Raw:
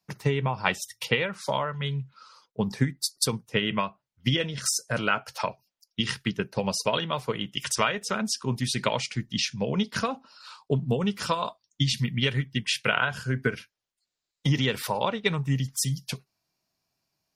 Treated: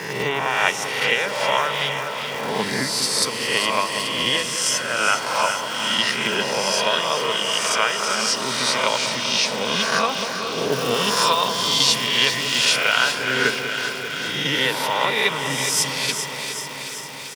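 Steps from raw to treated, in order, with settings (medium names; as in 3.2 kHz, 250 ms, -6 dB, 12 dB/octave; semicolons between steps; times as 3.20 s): reverse spectral sustain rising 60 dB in 1.15 s; frequency weighting A; crackle 270 per s -33 dBFS; high-pass 57 Hz; feedback delay 416 ms, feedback 56%, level -12 dB; gain riding within 3 dB 0.5 s; 10.72–13.12 s: treble shelf 5.2 kHz +10.5 dB; echo whose repeats swap between lows and highs 194 ms, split 1.2 kHz, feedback 86%, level -9 dB; trim +3.5 dB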